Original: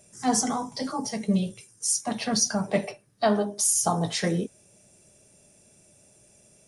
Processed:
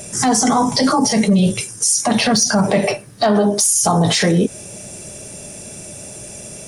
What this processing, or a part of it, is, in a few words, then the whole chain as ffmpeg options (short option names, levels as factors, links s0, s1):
loud club master: -af "acompressor=threshold=0.0355:ratio=2.5,asoftclip=type=hard:threshold=0.0944,alimiter=level_in=31.6:limit=0.891:release=50:level=0:latency=1,volume=0.501"